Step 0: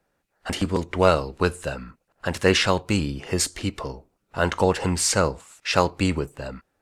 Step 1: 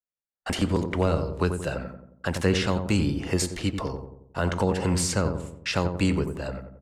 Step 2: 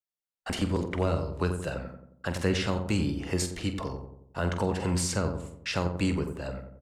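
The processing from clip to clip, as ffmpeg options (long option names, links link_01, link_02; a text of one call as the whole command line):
ffmpeg -i in.wav -filter_complex "[0:a]agate=range=-35dB:threshold=-43dB:ratio=16:detection=peak,acrossover=split=320[link_01][link_02];[link_02]acompressor=threshold=-26dB:ratio=5[link_03];[link_01][link_03]amix=inputs=2:normalize=0,asplit=2[link_04][link_05];[link_05]adelay=90,lowpass=frequency=1000:poles=1,volume=-6dB,asplit=2[link_06][link_07];[link_07]adelay=90,lowpass=frequency=1000:poles=1,volume=0.53,asplit=2[link_08][link_09];[link_09]adelay=90,lowpass=frequency=1000:poles=1,volume=0.53,asplit=2[link_10][link_11];[link_11]adelay=90,lowpass=frequency=1000:poles=1,volume=0.53,asplit=2[link_12][link_13];[link_13]adelay=90,lowpass=frequency=1000:poles=1,volume=0.53,asplit=2[link_14][link_15];[link_15]adelay=90,lowpass=frequency=1000:poles=1,volume=0.53,asplit=2[link_16][link_17];[link_17]adelay=90,lowpass=frequency=1000:poles=1,volume=0.53[link_18];[link_06][link_08][link_10][link_12][link_14][link_16][link_18]amix=inputs=7:normalize=0[link_19];[link_04][link_19]amix=inputs=2:normalize=0" out.wav
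ffmpeg -i in.wav -filter_complex "[0:a]asplit=2[link_01][link_02];[link_02]adelay=46,volume=-11dB[link_03];[link_01][link_03]amix=inputs=2:normalize=0,volume=-4dB" out.wav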